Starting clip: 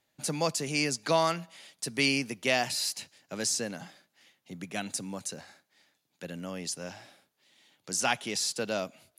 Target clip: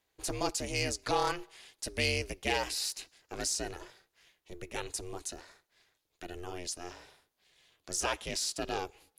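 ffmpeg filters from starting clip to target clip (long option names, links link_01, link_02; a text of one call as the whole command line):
ffmpeg -i in.wav -af "asoftclip=type=tanh:threshold=-16dB,aeval=exprs='val(0)*sin(2*PI*180*n/s)':channel_layout=same" out.wav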